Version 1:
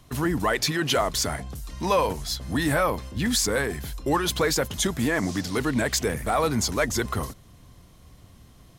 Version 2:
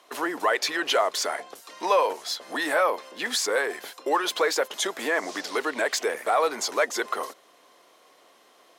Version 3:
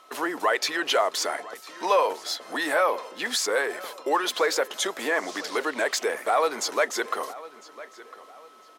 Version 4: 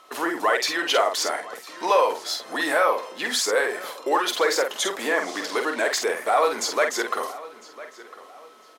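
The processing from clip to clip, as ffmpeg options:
-filter_complex "[0:a]highpass=f=420:w=0.5412,highpass=f=420:w=1.3066,aemphasis=mode=reproduction:type=cd,asplit=2[a][b];[b]acompressor=threshold=-32dB:ratio=6,volume=-3dB[c];[a][c]amix=inputs=2:normalize=0"
-filter_complex "[0:a]aeval=exprs='val(0)+0.00224*sin(2*PI*1300*n/s)':c=same,asplit=2[a][b];[b]adelay=1003,lowpass=f=4.3k:p=1,volume=-18dB,asplit=2[c][d];[d]adelay=1003,lowpass=f=4.3k:p=1,volume=0.35,asplit=2[e][f];[f]adelay=1003,lowpass=f=4.3k:p=1,volume=0.35[g];[a][c][e][g]amix=inputs=4:normalize=0"
-filter_complex "[0:a]asplit=2[a][b];[b]adelay=48,volume=-6dB[c];[a][c]amix=inputs=2:normalize=0,volume=1.5dB"

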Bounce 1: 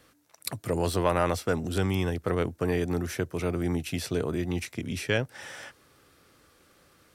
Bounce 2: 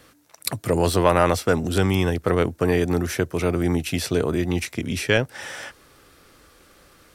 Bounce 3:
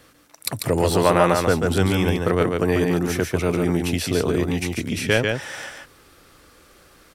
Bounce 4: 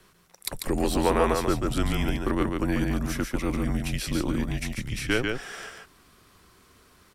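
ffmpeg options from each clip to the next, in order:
-af "asubboost=boost=3.5:cutoff=50,volume=7.5dB"
-af "aecho=1:1:143:0.631"
-af "afreqshift=-120,volume=-5.5dB"

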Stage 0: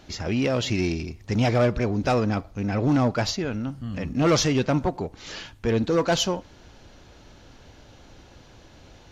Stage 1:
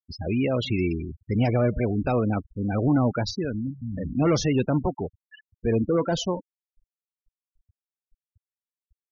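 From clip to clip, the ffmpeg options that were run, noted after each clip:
-filter_complex "[0:a]afftfilt=real='re*gte(hypot(re,im),0.0631)':imag='im*gte(hypot(re,im),0.0631)':win_size=1024:overlap=0.75,acrossover=split=470[a][b];[b]alimiter=limit=-21dB:level=0:latency=1:release=75[c];[a][c]amix=inputs=2:normalize=0"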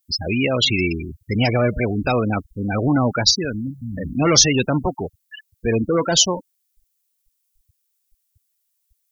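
-af "crystalizer=i=8.5:c=0,volume=2.5dB"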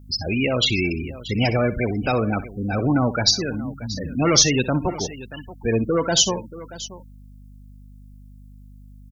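-af "aecho=1:1:62|631:0.178|0.15,aeval=exprs='val(0)+0.00891*(sin(2*PI*50*n/s)+sin(2*PI*2*50*n/s)/2+sin(2*PI*3*50*n/s)/3+sin(2*PI*4*50*n/s)/4+sin(2*PI*5*50*n/s)/5)':c=same,volume=-2dB"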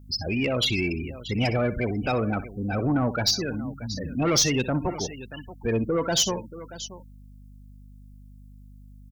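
-af "asoftclip=type=tanh:threshold=-11.5dB,volume=-3dB"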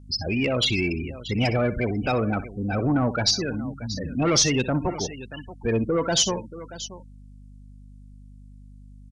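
-af "aresample=22050,aresample=44100,volume=1.5dB"

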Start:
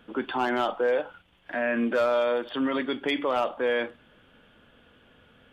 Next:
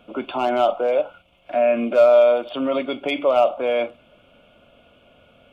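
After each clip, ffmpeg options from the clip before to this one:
-af "superequalizer=8b=3.16:11b=0.251:12b=1.58,volume=2dB"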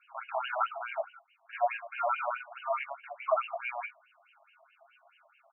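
-af "flanger=delay=15.5:depth=7.2:speed=1.2,aecho=1:1:7.4:0.88,afftfilt=real='re*between(b*sr/1024,830*pow(2200/830,0.5+0.5*sin(2*PI*4.7*pts/sr))/1.41,830*pow(2200/830,0.5+0.5*sin(2*PI*4.7*pts/sr))*1.41)':imag='im*between(b*sr/1024,830*pow(2200/830,0.5+0.5*sin(2*PI*4.7*pts/sr))/1.41,830*pow(2200/830,0.5+0.5*sin(2*PI*4.7*pts/sr))*1.41)':win_size=1024:overlap=0.75"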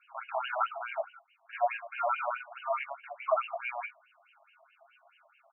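-af anull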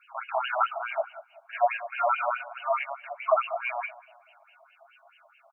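-filter_complex "[0:a]asplit=2[a][b];[b]adelay=190,lowpass=f=960:p=1,volume=-15dB,asplit=2[c][d];[d]adelay=190,lowpass=f=960:p=1,volume=0.52,asplit=2[e][f];[f]adelay=190,lowpass=f=960:p=1,volume=0.52,asplit=2[g][h];[h]adelay=190,lowpass=f=960:p=1,volume=0.52,asplit=2[i][j];[j]adelay=190,lowpass=f=960:p=1,volume=0.52[k];[a][c][e][g][i][k]amix=inputs=6:normalize=0,volume=5dB"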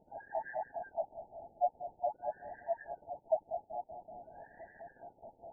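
-af "aeval=exprs='val(0)+0.5*0.0211*sgn(val(0))':c=same,asuperstop=centerf=1200:order=20:qfactor=1.7,afftfilt=real='re*lt(b*sr/1024,890*pow(2000/890,0.5+0.5*sin(2*PI*0.48*pts/sr)))':imag='im*lt(b*sr/1024,890*pow(2000/890,0.5+0.5*sin(2*PI*0.48*pts/sr)))':win_size=1024:overlap=0.75,volume=-8.5dB"

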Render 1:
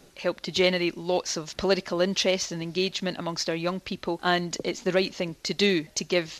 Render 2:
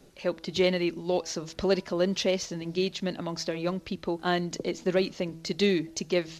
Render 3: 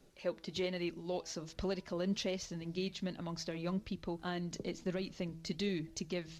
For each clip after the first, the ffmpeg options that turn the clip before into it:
-filter_complex "[0:a]bandreject=f=163.1:t=h:w=4,bandreject=f=326.2:t=h:w=4,bandreject=f=489.3:t=h:w=4,bandreject=f=652.4:t=h:w=4,bandreject=f=815.5:t=h:w=4,bandreject=f=978.6:t=h:w=4,bandreject=f=1.1417k:t=h:w=4,bandreject=f=1.3048k:t=h:w=4,bandreject=f=1.4679k:t=h:w=4,acrossover=split=600|4000[a][b][c];[a]acontrast=38[d];[d][b][c]amix=inputs=3:normalize=0,volume=-5.5dB"
-af "asubboost=boost=2.5:cutoff=220,alimiter=limit=-17.5dB:level=0:latency=1:release=164,flanger=delay=0.6:depth=4.7:regen=79:speed=1.2:shape=triangular,volume=-4.5dB"

